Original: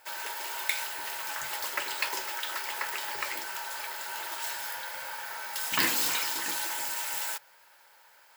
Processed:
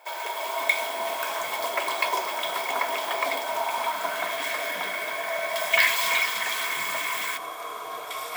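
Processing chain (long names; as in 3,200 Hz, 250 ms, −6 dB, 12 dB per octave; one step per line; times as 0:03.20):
high-pass filter sweep 370 Hz → 1,800 Hz, 0:03.15–0:04.31
delay with pitch and tempo change per echo 247 ms, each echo −6 semitones, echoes 3, each echo −6 dB
hollow resonant body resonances 690/1,000/2,200/3,300 Hz, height 16 dB, ringing for 30 ms
level −2 dB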